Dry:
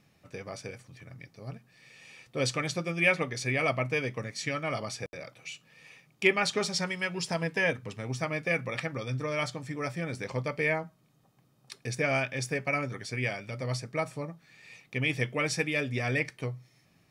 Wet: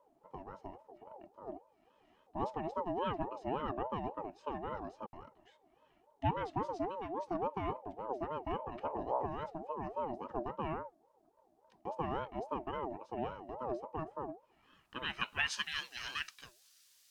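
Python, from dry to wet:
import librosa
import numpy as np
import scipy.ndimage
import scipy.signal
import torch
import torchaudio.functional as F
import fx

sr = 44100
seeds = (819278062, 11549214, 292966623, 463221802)

y = fx.octave_divider(x, sr, octaves=1, level_db=4.0, at=(8.8, 9.26))
y = fx.dmg_noise_colour(y, sr, seeds[0], colour='violet', level_db=-53.0)
y = fx.filter_sweep_bandpass(y, sr, from_hz=210.0, to_hz=4400.0, start_s=14.39, end_s=15.7, q=1.4)
y = fx.ring_lfo(y, sr, carrier_hz=620.0, swing_pct=25, hz=3.6)
y = F.gain(torch.from_numpy(y), 2.5).numpy()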